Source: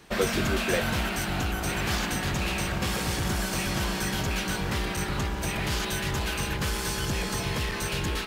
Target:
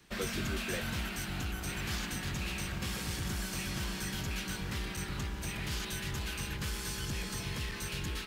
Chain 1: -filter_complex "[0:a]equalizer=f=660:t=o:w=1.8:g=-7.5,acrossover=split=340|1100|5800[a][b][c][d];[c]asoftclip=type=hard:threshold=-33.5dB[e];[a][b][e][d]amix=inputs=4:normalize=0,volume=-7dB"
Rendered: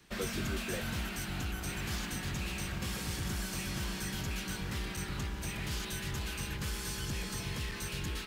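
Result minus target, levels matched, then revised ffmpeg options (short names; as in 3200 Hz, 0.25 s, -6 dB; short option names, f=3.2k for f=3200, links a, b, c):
hard clip: distortion +16 dB
-filter_complex "[0:a]equalizer=f=660:t=o:w=1.8:g=-7.5,acrossover=split=340|1100|5800[a][b][c][d];[c]asoftclip=type=hard:threshold=-26.5dB[e];[a][b][e][d]amix=inputs=4:normalize=0,volume=-7dB"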